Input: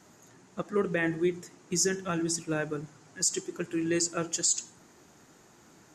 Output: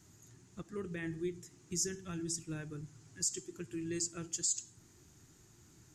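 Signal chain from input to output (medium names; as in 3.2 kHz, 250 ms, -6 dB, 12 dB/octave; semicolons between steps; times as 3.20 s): in parallel at 0 dB: compression, threshold -40 dBFS, peak gain reduction 16.5 dB; on the sum: FFT filter 110 Hz 0 dB, 210 Hz -14 dB, 360 Hz -12 dB, 520 Hz -23 dB, 7.4 kHz -8 dB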